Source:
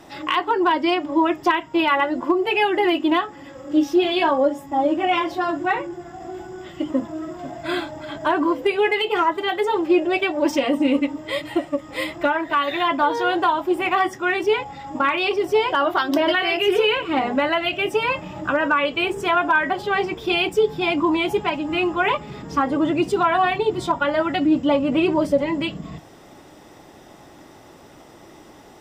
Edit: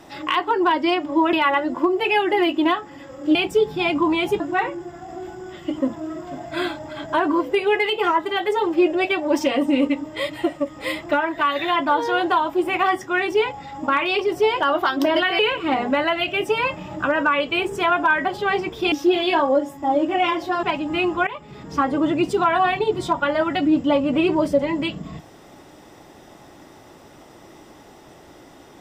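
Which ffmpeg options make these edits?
ffmpeg -i in.wav -filter_complex "[0:a]asplit=8[link_01][link_02][link_03][link_04][link_05][link_06][link_07][link_08];[link_01]atrim=end=1.332[link_09];[link_02]atrim=start=1.788:end=3.812[link_10];[link_03]atrim=start=20.368:end=21.422[link_11];[link_04]atrim=start=5.518:end=16.512[link_12];[link_05]atrim=start=16.838:end=20.372[link_13];[link_06]atrim=start=3.808:end=5.522[link_14];[link_07]atrim=start=21.418:end=22.06,asetpts=PTS-STARTPTS,afade=type=out:start_time=0.638:duration=0.004:curve=hsin:silence=0.141254[link_15];[link_08]atrim=start=22.06,asetpts=PTS-STARTPTS,afade=type=in:duration=0.53:silence=0.141254[link_16];[link_09][link_10]acrossfade=duration=0.004:curve1=hsin:curve2=hsin[link_17];[link_17][link_11]acrossfade=duration=0.004:curve1=hsin:curve2=hsin[link_18];[link_18][link_12]acrossfade=duration=0.004:curve1=hsin:curve2=hsin[link_19];[link_19][link_13]acrossfade=duration=0.004:curve1=hsin:curve2=hsin[link_20];[link_20][link_14]acrossfade=duration=0.004:curve1=hsin:curve2=hsin[link_21];[link_15][link_16]concat=n=2:v=0:a=1[link_22];[link_21][link_22]acrossfade=duration=0.004:curve1=hsin:curve2=hsin" out.wav

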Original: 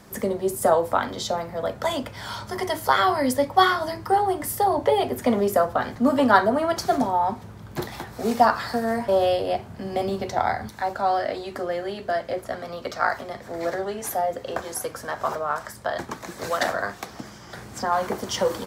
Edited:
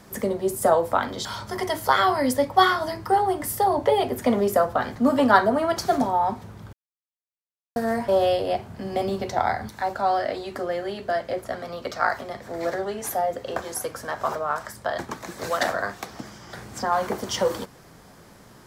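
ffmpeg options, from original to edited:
ffmpeg -i in.wav -filter_complex "[0:a]asplit=4[link_01][link_02][link_03][link_04];[link_01]atrim=end=1.252[link_05];[link_02]atrim=start=2.248:end=7.73,asetpts=PTS-STARTPTS,afade=type=out:start_time=5.478:duration=0.004:curve=hsin[link_06];[link_03]atrim=start=7.73:end=8.76,asetpts=PTS-STARTPTS,volume=0[link_07];[link_04]atrim=start=8.76,asetpts=PTS-STARTPTS,afade=type=in:duration=0.004:curve=hsin[link_08];[link_06][link_07][link_08]concat=n=3:v=0:a=1[link_09];[link_05][link_09]acrossfade=duration=0.004:curve1=hsin:curve2=hsin" out.wav

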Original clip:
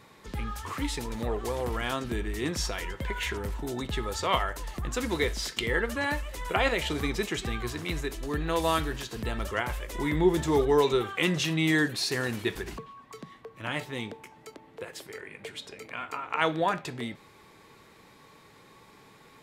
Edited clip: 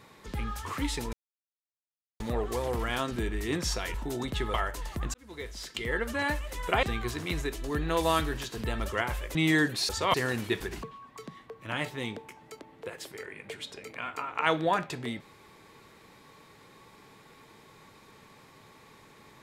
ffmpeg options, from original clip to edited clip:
ffmpeg -i in.wav -filter_complex "[0:a]asplit=9[link_01][link_02][link_03][link_04][link_05][link_06][link_07][link_08][link_09];[link_01]atrim=end=1.13,asetpts=PTS-STARTPTS,afade=type=out:start_time=1.126:duration=0.004:curve=hsin,apad=pad_dur=1.07[link_10];[link_02]atrim=start=1.13:end=2.872,asetpts=PTS-STARTPTS,afade=type=in:duration=0.004:curve=hsin[link_11];[link_03]atrim=start=3.508:end=4.112[link_12];[link_04]atrim=start=4.358:end=4.96,asetpts=PTS-STARTPTS,afade=type=out:start_time=0.598:duration=0.004:curve=hsin[link_13];[link_05]atrim=start=4.96:end=6.652,asetpts=PTS-STARTPTS,afade=type=in:duration=1.15[link_14];[link_06]atrim=start=7.418:end=9.942[link_15];[link_07]atrim=start=11.548:end=12.092[link_16];[link_08]atrim=start=4.108:end=4.362[link_17];[link_09]atrim=start=12.088[link_18];[link_10][link_11]concat=n=2:v=0:a=1[link_19];[link_19][link_12]acrossfade=duration=0.004:curve1=hsin:curve2=hsin[link_20];[link_13][link_14]concat=n=2:v=0:a=1[link_21];[link_20][link_21]acrossfade=duration=0.004:curve1=hsin:curve2=hsin[link_22];[link_22][link_15]acrossfade=duration=0.004:curve1=hsin:curve2=hsin[link_23];[link_23][link_16]acrossfade=duration=0.004:curve1=hsin:curve2=hsin[link_24];[link_24][link_17]acrossfade=duration=0.004:curve1=hsin:curve2=hsin[link_25];[link_25][link_18]acrossfade=duration=0.004:curve1=hsin:curve2=hsin" out.wav

